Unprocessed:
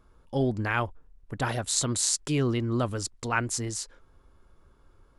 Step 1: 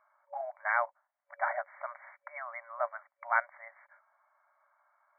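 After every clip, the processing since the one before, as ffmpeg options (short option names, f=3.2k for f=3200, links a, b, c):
-af "afftfilt=real='re*between(b*sr/4096,560,2300)':imag='im*between(b*sr/4096,560,2300)':win_size=4096:overlap=0.75"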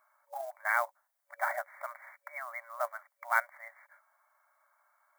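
-filter_complex "[0:a]asplit=2[a][b];[b]acrusher=bits=5:mode=log:mix=0:aa=0.000001,volume=-6dB[c];[a][c]amix=inputs=2:normalize=0,crystalizer=i=4:c=0,volume=-6dB"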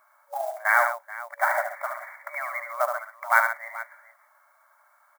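-af "aecho=1:1:73|132|432:0.501|0.251|0.15,volume=8.5dB"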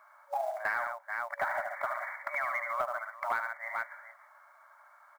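-filter_complex "[0:a]acompressor=threshold=-31dB:ratio=8,asplit=2[a][b];[b]highpass=f=720:p=1,volume=9dB,asoftclip=type=tanh:threshold=-18.5dB[c];[a][c]amix=inputs=2:normalize=0,lowpass=f=2.3k:p=1,volume=-6dB"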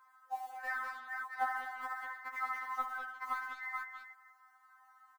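-filter_complex "[0:a]asplit=2[a][b];[b]adelay=200,highpass=300,lowpass=3.4k,asoftclip=type=hard:threshold=-28.5dB,volume=-10dB[c];[a][c]amix=inputs=2:normalize=0,afftfilt=real='re*3.46*eq(mod(b,12),0)':imag='im*3.46*eq(mod(b,12),0)':win_size=2048:overlap=0.75,volume=-1.5dB"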